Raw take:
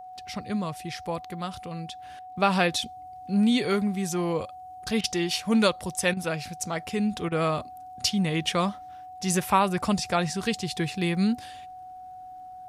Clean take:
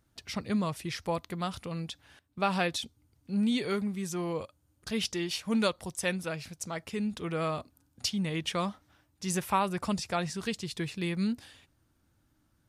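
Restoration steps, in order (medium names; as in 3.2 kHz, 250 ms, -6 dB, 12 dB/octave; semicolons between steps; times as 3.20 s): de-click; band-stop 740 Hz, Q 30; interpolate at 5.01/6.14/7.29 s, 27 ms; gain correction -6 dB, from 2.02 s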